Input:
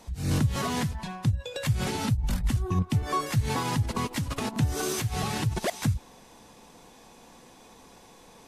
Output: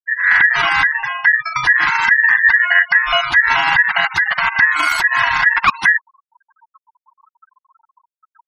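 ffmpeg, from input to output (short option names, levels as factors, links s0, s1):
-af "aeval=exprs='val(0)*sin(2*PI*1800*n/s)':c=same,equalizer=f=500:t=o:w=1:g=-12,equalizer=f=1000:t=o:w=1:g=11,equalizer=f=8000:t=o:w=1:g=-4,acrusher=bits=9:mix=0:aa=0.000001,tremolo=f=25:d=0.182,afftfilt=real='re*gte(hypot(re,im),0.0141)':imag='im*gte(hypot(re,im),0.0141)':win_size=1024:overlap=0.75,alimiter=level_in=6.68:limit=0.891:release=50:level=0:latency=1,volume=0.891"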